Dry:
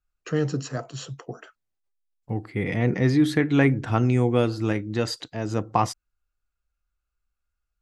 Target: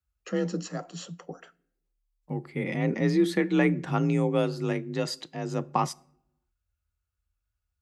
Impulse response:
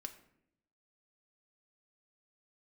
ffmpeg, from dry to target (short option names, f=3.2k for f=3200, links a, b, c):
-filter_complex "[0:a]bandreject=f=1.5k:w=16,asplit=2[a][b];[1:a]atrim=start_sample=2205,highshelf=f=5.3k:g=9[c];[b][c]afir=irnorm=-1:irlink=0,volume=-9dB[d];[a][d]amix=inputs=2:normalize=0,afreqshift=36,volume=-5.5dB"